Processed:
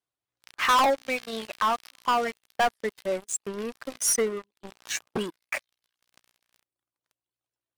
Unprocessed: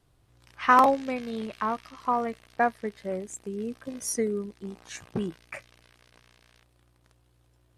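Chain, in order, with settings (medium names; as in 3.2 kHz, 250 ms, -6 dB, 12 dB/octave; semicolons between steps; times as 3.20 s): reverb removal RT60 1.1 s; high-pass 860 Hz 6 dB/octave; waveshaping leveller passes 5; trim -7 dB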